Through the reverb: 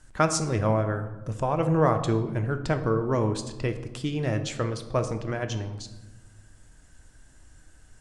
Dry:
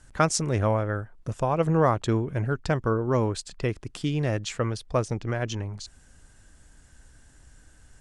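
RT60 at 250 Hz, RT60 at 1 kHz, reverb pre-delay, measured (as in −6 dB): 1.6 s, 1.0 s, 3 ms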